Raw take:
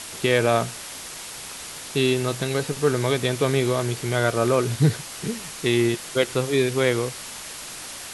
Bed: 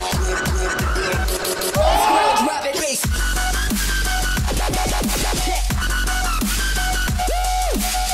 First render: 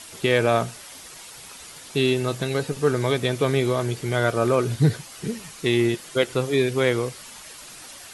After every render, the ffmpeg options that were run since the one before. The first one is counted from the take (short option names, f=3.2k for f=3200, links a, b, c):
-af "afftdn=nr=8:nf=-37"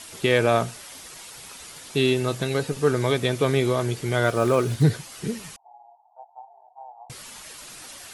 -filter_complex "[0:a]asettb=1/sr,asplit=3[a][b][c];[a]atrim=end=4.254[d];[b]atrim=start=4.25:end=4.83,asetpts=PTS-STARTPTS,afade=t=in:d=0.004:c=qsin,afade=t=out:st=0.576:d=0.004:c=qsin,acrusher=bits=8:mode=log:mix=0:aa=0.000001[e];[c]atrim=start=4.826[f];[d][e]acrossfade=d=0.004:c1=hsin:c2=qsin[g];[g][f]acrossfade=d=0.004:c1=qsin:c2=hsin,asettb=1/sr,asplit=3[h][i][j];[h]atrim=end=5.564[k];[i]atrim=start=5.56:end=7.1,asetpts=PTS-STARTPTS,afade=t=in:d=0.004:c=qsin,afade=t=out:st=1.536:d=0.004:c=qsin,asuperpass=centerf=800:order=8:qfactor=3.6[l];[j]atrim=start=7.096[m];[k][l]acrossfade=d=0.004:c1=hsin:c2=qsin[n];[n][m]acrossfade=d=0.004:c1=qsin:c2=hsin"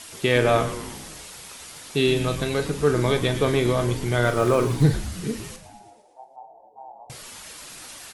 -filter_complex "[0:a]asplit=2[a][b];[b]adelay=41,volume=-10.5dB[c];[a][c]amix=inputs=2:normalize=0,asplit=8[d][e][f][g][h][i][j][k];[e]adelay=114,afreqshift=-110,volume=-12dB[l];[f]adelay=228,afreqshift=-220,volume=-16.4dB[m];[g]adelay=342,afreqshift=-330,volume=-20.9dB[n];[h]adelay=456,afreqshift=-440,volume=-25.3dB[o];[i]adelay=570,afreqshift=-550,volume=-29.7dB[p];[j]adelay=684,afreqshift=-660,volume=-34.2dB[q];[k]adelay=798,afreqshift=-770,volume=-38.6dB[r];[d][l][m][n][o][p][q][r]amix=inputs=8:normalize=0"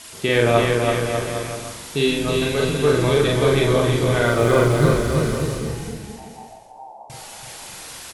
-filter_complex "[0:a]asplit=2[a][b];[b]adelay=43,volume=-2dB[c];[a][c]amix=inputs=2:normalize=0,aecho=1:1:330|594|805.2|974.2|1109:0.631|0.398|0.251|0.158|0.1"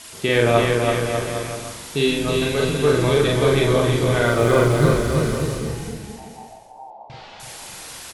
-filter_complex "[0:a]asettb=1/sr,asplit=3[a][b][c];[a]atrim=end=6.904[d];[b]atrim=start=6.9:end=7.4,asetpts=PTS-STARTPTS,afade=t=in:d=0.004:c=qsin,afade=t=out:st=0.496:d=0.004:c=qsin,lowpass=f=4.2k:w=0.5412,lowpass=f=4.2k:w=1.3066[e];[c]atrim=start=7.396[f];[d][e]acrossfade=d=0.004:c1=hsin:c2=qsin[g];[g][f]acrossfade=d=0.004:c1=qsin:c2=hsin"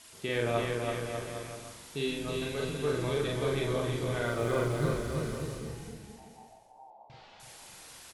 -af "volume=-13.5dB"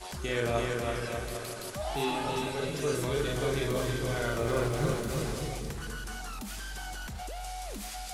-filter_complex "[1:a]volume=-19.5dB[a];[0:a][a]amix=inputs=2:normalize=0"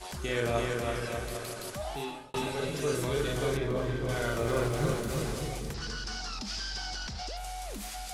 -filter_complex "[0:a]asettb=1/sr,asplit=3[a][b][c];[a]atrim=end=3.574[d];[b]atrim=start=3.57:end=4.09,asetpts=PTS-STARTPTS,afade=t=in:d=0.004:c=qsin,afade=t=out:st=0.516:d=0.004:c=qsin,lowpass=f=1.7k:p=1[e];[c]atrim=start=4.086[f];[d][e]acrossfade=d=0.004:c1=hsin:c2=qsin[g];[g][f]acrossfade=d=0.004:c1=qsin:c2=hsin,asettb=1/sr,asplit=3[h][i][j];[h]atrim=end=5.744[k];[i]atrim=start=5.74:end=7.37,asetpts=PTS-STARTPTS,afade=t=in:d=0.004:c=qsin,afade=t=out:st=1.626:d=0.004:c=qsin,lowpass=f=5.1k:t=q:w=5.1[l];[j]atrim=start=7.366[m];[k][l]acrossfade=d=0.004:c1=hsin:c2=qsin[n];[n][m]acrossfade=d=0.004:c1=qsin:c2=hsin,asplit=2[o][p];[o]atrim=end=2.34,asetpts=PTS-STARTPTS,afade=t=out:st=1.73:d=0.61[q];[p]atrim=start=2.34,asetpts=PTS-STARTPTS,afade=t=in:d=0.004:c=hsin[r];[q][r]concat=n=2:v=0:a=1"